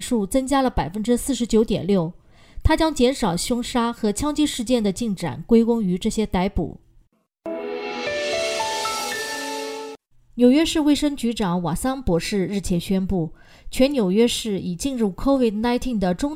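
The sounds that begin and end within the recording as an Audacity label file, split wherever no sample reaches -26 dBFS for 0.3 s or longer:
2.580000	6.730000	sound
7.460000	9.880000	sound
10.380000	13.270000	sound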